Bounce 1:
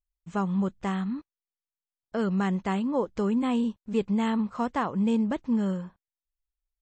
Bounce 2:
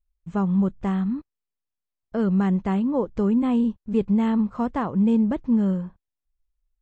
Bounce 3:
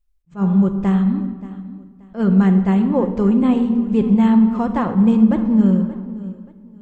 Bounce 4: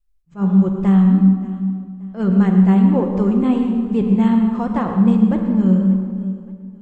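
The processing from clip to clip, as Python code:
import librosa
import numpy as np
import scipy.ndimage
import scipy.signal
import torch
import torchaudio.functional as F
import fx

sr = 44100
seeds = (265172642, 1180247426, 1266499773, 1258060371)

y1 = fx.tilt_eq(x, sr, slope=-2.5)
y2 = fx.echo_feedback(y1, sr, ms=579, feedback_pct=28, wet_db=-18.0)
y2 = fx.room_shoebox(y2, sr, seeds[0], volume_m3=1600.0, walls='mixed', distance_m=0.88)
y2 = fx.attack_slew(y2, sr, db_per_s=290.0)
y2 = F.gain(torch.from_numpy(y2), 4.5).numpy()
y3 = fx.comb_fb(y2, sr, f0_hz=190.0, decay_s=1.2, harmonics='all', damping=0.0, mix_pct=70)
y3 = fx.vibrato(y3, sr, rate_hz=2.6, depth_cents=34.0)
y3 = fx.rev_plate(y3, sr, seeds[1], rt60_s=1.0, hf_ratio=0.75, predelay_ms=90, drr_db=7.5)
y3 = F.gain(torch.from_numpy(y3), 8.0).numpy()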